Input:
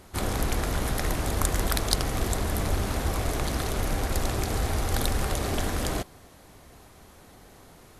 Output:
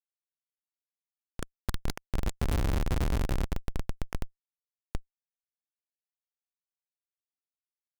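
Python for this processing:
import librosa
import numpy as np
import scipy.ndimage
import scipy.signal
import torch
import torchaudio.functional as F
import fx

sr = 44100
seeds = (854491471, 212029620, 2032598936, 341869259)

y = fx.doppler_pass(x, sr, speed_mps=6, closest_m=3.1, pass_at_s=2.94)
y = fx.schmitt(y, sr, flips_db=-23.0)
y = y * 10.0 ** (8.0 / 20.0)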